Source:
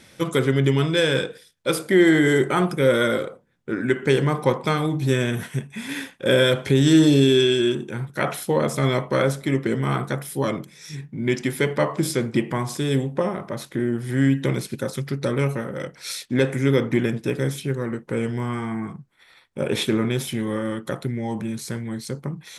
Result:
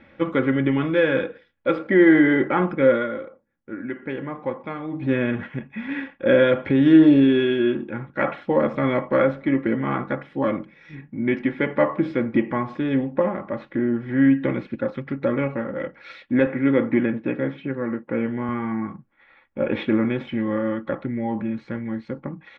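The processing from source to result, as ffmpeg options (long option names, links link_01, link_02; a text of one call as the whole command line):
ffmpeg -i in.wav -filter_complex "[0:a]asettb=1/sr,asplit=3[link_01][link_02][link_03];[link_01]atrim=end=16.464[link_04];[link_02]atrim=start=16.46:end=18.49,asetpts=PTS-STARTPTS,afade=type=in:duration=0.004:curve=qsin,afade=type=out:start_time=2.026:duration=0.004:curve=qsin,highpass=110,lowpass=4200[link_05];[link_03]atrim=start=18.486[link_06];[link_04][link_05]acrossfade=duration=0.004:curve1=hsin:curve2=qsin[link_07];[link_07][link_06]acrossfade=duration=0.004:curve1=qsin:curve2=hsin,asplit=3[link_08][link_09][link_10];[link_08]atrim=end=3.07,asetpts=PTS-STARTPTS,afade=type=out:start_time=2.85:duration=0.22:silence=0.354813[link_11];[link_09]atrim=start=3.07:end=4.87,asetpts=PTS-STARTPTS,volume=-9dB[link_12];[link_10]atrim=start=4.87,asetpts=PTS-STARTPTS,afade=type=in:duration=0.22:silence=0.354813[link_13];[link_11][link_12][link_13]concat=n=3:v=0:a=1,lowpass=frequency=2400:width=0.5412,lowpass=frequency=2400:width=1.3066,aecho=1:1:3.6:0.57" out.wav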